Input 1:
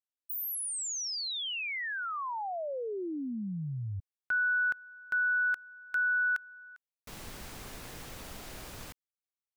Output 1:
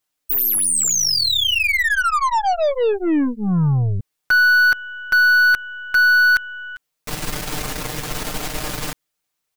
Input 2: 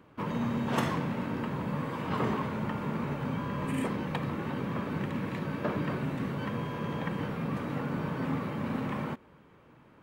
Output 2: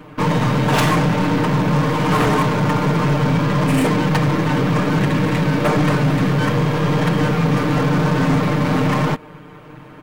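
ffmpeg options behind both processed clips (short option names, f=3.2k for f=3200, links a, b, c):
-af "aecho=1:1:6.6:0.98,aeval=exprs='0.266*sin(PI/2*3.55*val(0)/0.266)':c=same,aeval=exprs='0.266*(cos(1*acos(clip(val(0)/0.266,-1,1)))-cos(1*PI/2))+0.0237*(cos(8*acos(clip(val(0)/0.266,-1,1)))-cos(8*PI/2))':c=same"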